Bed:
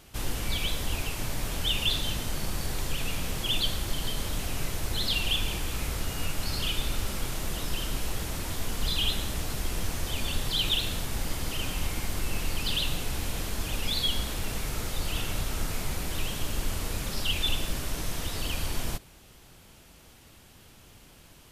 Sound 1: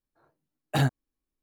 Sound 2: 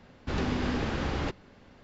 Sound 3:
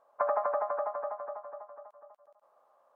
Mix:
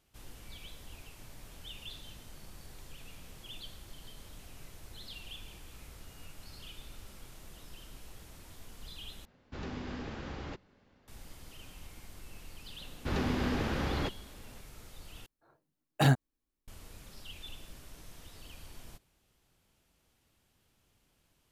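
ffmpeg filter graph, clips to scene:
ffmpeg -i bed.wav -i cue0.wav -i cue1.wav -filter_complex "[2:a]asplit=2[link_01][link_02];[0:a]volume=-19dB,asplit=3[link_03][link_04][link_05];[link_03]atrim=end=9.254[link_06];[link_01]atrim=end=1.83,asetpts=PTS-STARTPTS,volume=-11dB[link_07];[link_04]atrim=start=11.076:end=15.264[link_08];[1:a]atrim=end=1.42,asetpts=PTS-STARTPTS,volume=-0.5dB[link_09];[link_05]atrim=start=16.676[link_10];[link_02]atrim=end=1.83,asetpts=PTS-STARTPTS,volume=-2dB,afade=type=in:duration=0.004:curve=hsin,afade=type=out:start_time=1.826:duration=0.004:curve=hsin,adelay=12780[link_11];[link_06][link_07]acrossfade=duration=0.004:curve1=hsin:curve2=hsin[link_12];[link_12][link_08]acrossfade=duration=0.004:curve1=hsin:curve2=hsin[link_13];[link_13][link_09]acrossfade=duration=0.004:curve1=hsin:curve2=hsin[link_14];[link_14][link_10]acrossfade=duration=0.004:curve1=hsin:curve2=hsin[link_15];[link_15][link_11]amix=inputs=2:normalize=0" out.wav

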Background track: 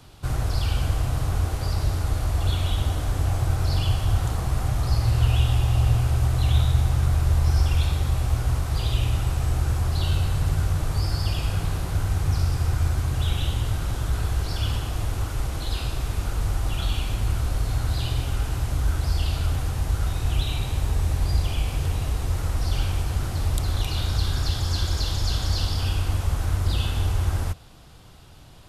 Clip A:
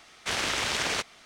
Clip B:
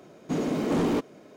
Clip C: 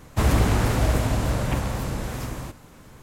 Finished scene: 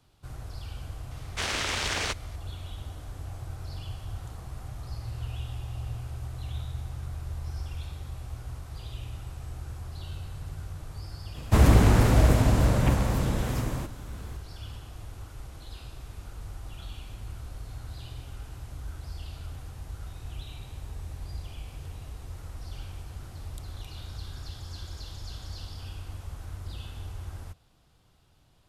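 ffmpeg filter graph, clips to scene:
ffmpeg -i bed.wav -i cue0.wav -i cue1.wav -i cue2.wav -filter_complex "[0:a]volume=-15.5dB[link_01];[3:a]lowshelf=frequency=500:gain=4[link_02];[1:a]atrim=end=1.25,asetpts=PTS-STARTPTS,volume=-1.5dB,afade=type=in:duration=0.004:curve=hsin,afade=type=out:start_time=1.246:duration=0.004:curve=hsin,adelay=1110[link_03];[link_02]atrim=end=3.02,asetpts=PTS-STARTPTS,volume=-1.5dB,afade=type=in:duration=0.004:curve=hsin,afade=type=out:start_time=3.016:duration=0.004:curve=hsin,adelay=11350[link_04];[link_01][link_03][link_04]amix=inputs=3:normalize=0" out.wav

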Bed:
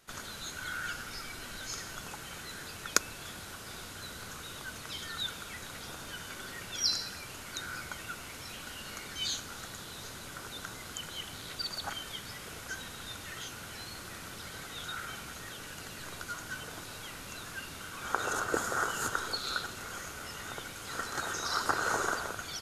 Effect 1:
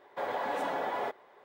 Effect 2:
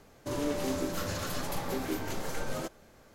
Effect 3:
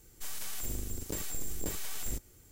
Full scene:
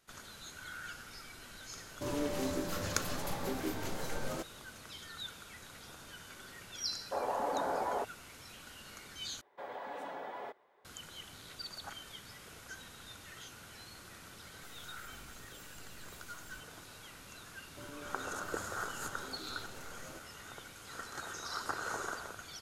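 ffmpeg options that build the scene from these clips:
ffmpeg -i bed.wav -i cue0.wav -i cue1.wav -i cue2.wav -filter_complex "[2:a]asplit=2[link_01][link_02];[1:a]asplit=2[link_03][link_04];[0:a]volume=-8dB[link_05];[link_03]afwtdn=0.0178[link_06];[3:a]acompressor=threshold=-34dB:ratio=6:attack=3.2:release=140:knee=1:detection=peak[link_07];[link_02]alimiter=level_in=2dB:limit=-24dB:level=0:latency=1:release=71,volume=-2dB[link_08];[link_05]asplit=2[link_09][link_10];[link_09]atrim=end=9.414[link_11];[link_04]atrim=end=1.44,asetpts=PTS-STARTPTS,volume=-10.5dB[link_12];[link_10]atrim=start=10.846[link_13];[link_01]atrim=end=3.14,asetpts=PTS-STARTPTS,volume=-3.5dB,afade=type=in:duration=0.004:curve=hsin,afade=type=out:start_time=3.136:duration=0.004:curve=hsin,adelay=1750[link_14];[link_06]atrim=end=1.44,asetpts=PTS-STARTPTS,volume=-1dB,afade=type=in:duration=0.004:curve=hsin,afade=type=out:start_time=1.436:duration=0.004:curve=hsin,adelay=6940[link_15];[link_07]atrim=end=2.51,asetpts=PTS-STARTPTS,volume=-16.5dB,afade=type=in:duration=0.004:curve=hsin,afade=type=out:start_time=2.506:duration=0.004:curve=hsin,adelay=14420[link_16];[link_08]atrim=end=3.14,asetpts=PTS-STARTPTS,volume=-14.5dB,afade=type=in:duration=0.004:curve=hsin,afade=type=out:start_time=3.136:duration=0.004:curve=hsin,adelay=17510[link_17];[link_11][link_12]acrossfade=duration=0.004:curve1=hsin:curve2=hsin[link_18];[link_18][link_13]acrossfade=duration=0.004:curve1=hsin:curve2=hsin[link_19];[link_19][link_14][link_15][link_16][link_17]amix=inputs=5:normalize=0" out.wav

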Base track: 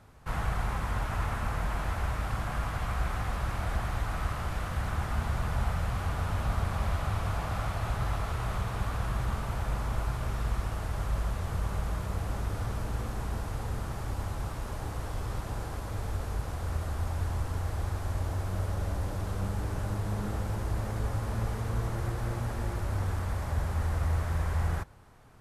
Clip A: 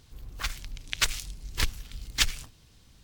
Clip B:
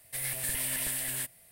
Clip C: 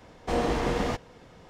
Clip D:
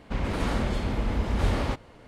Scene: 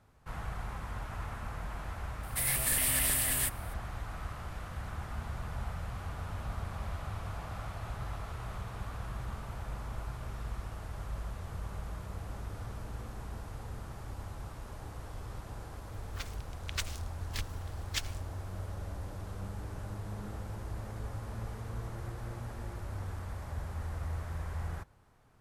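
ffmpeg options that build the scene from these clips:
ffmpeg -i bed.wav -i cue0.wav -i cue1.wav -filter_complex "[0:a]volume=-8.5dB[link_01];[2:a]acontrast=36,atrim=end=1.51,asetpts=PTS-STARTPTS,volume=-2.5dB,afade=type=in:duration=0.004:curve=hsin,afade=type=out:start_time=1.506:duration=0.004:curve=hsin,adelay=2230[link_02];[1:a]atrim=end=3.03,asetpts=PTS-STARTPTS,volume=-11dB,afade=type=in:duration=0.004:curve=hsin,afade=type=out:start_time=3.026:duration=0.004:curve=hsin,adelay=15760[link_03];[link_01][link_02][link_03]amix=inputs=3:normalize=0" out.wav

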